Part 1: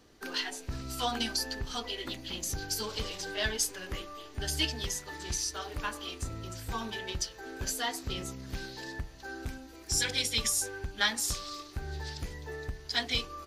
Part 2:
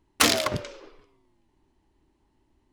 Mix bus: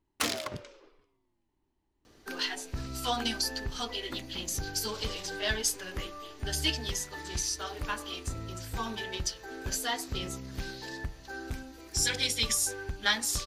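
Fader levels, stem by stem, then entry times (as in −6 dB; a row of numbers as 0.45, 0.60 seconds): +1.0, −10.5 decibels; 2.05, 0.00 seconds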